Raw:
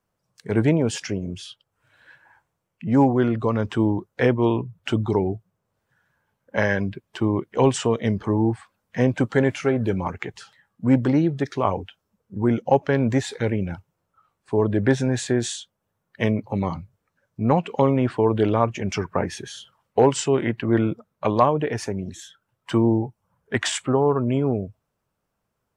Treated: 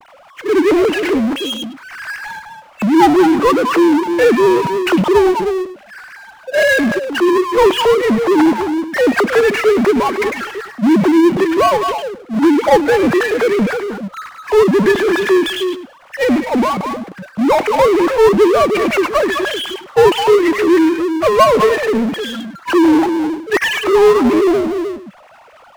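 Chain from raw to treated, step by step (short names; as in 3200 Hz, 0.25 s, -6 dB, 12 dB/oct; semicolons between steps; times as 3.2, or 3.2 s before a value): sine-wave speech; delay with a stepping band-pass 0.103 s, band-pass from 2700 Hz, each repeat -1.4 oct, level -7.5 dB; power-law curve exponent 0.5; gain +2 dB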